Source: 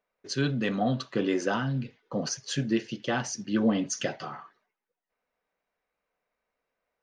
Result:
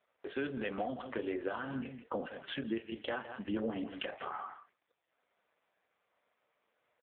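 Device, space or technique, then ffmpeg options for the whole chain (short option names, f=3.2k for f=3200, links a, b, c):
voicemail: -filter_complex "[0:a]asplit=3[a][b][c];[a]afade=t=out:st=3.63:d=0.02[d];[b]asplit=2[e][f];[f]adelay=31,volume=-11dB[g];[e][g]amix=inputs=2:normalize=0,afade=t=in:st=3.63:d=0.02,afade=t=out:st=4.39:d=0.02[h];[c]afade=t=in:st=4.39:d=0.02[i];[d][h][i]amix=inputs=3:normalize=0,highpass=360,lowpass=3.2k,aecho=1:1:165:0.168,acompressor=threshold=-43dB:ratio=8,volume=10.5dB" -ar 8000 -c:a libopencore_amrnb -b:a 4750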